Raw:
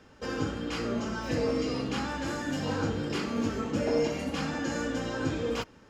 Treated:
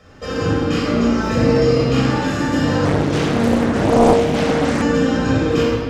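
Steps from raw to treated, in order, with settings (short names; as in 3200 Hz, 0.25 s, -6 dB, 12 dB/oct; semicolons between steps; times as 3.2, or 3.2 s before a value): shoebox room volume 3700 m³, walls mixed, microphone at 6.2 m; 2.85–4.82 Doppler distortion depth 0.93 ms; gain +4 dB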